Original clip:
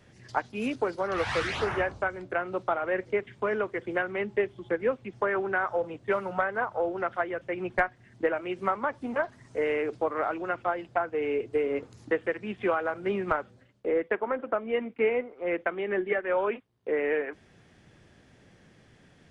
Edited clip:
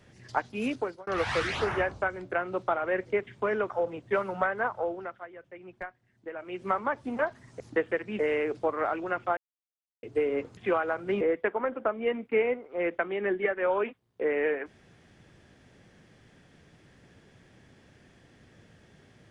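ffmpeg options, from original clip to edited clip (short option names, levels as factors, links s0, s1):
-filter_complex "[0:a]asplit=11[s0][s1][s2][s3][s4][s5][s6][s7][s8][s9][s10];[s0]atrim=end=1.07,asetpts=PTS-STARTPTS,afade=t=out:st=0.73:d=0.34[s11];[s1]atrim=start=1.07:end=3.702,asetpts=PTS-STARTPTS,afade=t=in:d=0.004:c=hsin[s12];[s2]atrim=start=5.668:end=7.15,asetpts=PTS-STARTPTS,afade=t=out:st=1.002:d=0.48:silence=0.199526[s13];[s3]atrim=start=7.15:end=8.26,asetpts=PTS-STARTPTS,volume=0.2[s14];[s4]atrim=start=8.26:end=9.572,asetpts=PTS-STARTPTS,afade=t=in:d=0.48:silence=0.199526[s15];[s5]atrim=start=11.948:end=12.542[s16];[s6]atrim=start=9.568:end=10.75,asetpts=PTS-STARTPTS,afade=t=out:st=1.178:d=0.004:c=hsin[s17];[s7]atrim=start=10.75:end=11.41,asetpts=PTS-STARTPTS,volume=0[s18];[s8]atrim=start=11.41:end=11.952,asetpts=PTS-STARTPTS,afade=t=in:d=0.004:c=hsin[s19];[s9]atrim=start=12.538:end=13.182[s20];[s10]atrim=start=13.878[s21];[s11][s12]concat=n=2:v=0:a=1[s22];[s13][s14][s15]concat=n=3:v=0:a=1[s23];[s22][s23]acrossfade=d=0.004:c1=hsin:c2=hsin[s24];[s24][s16]acrossfade=d=0.004:c1=hsin:c2=hsin[s25];[s17][s18][s19]concat=n=3:v=0:a=1[s26];[s25][s26]acrossfade=d=0.004:c1=hsin:c2=hsin[s27];[s27][s20]acrossfade=d=0.004:c1=hsin:c2=hsin[s28];[s28][s21]acrossfade=d=0.004:c1=hsin:c2=hsin"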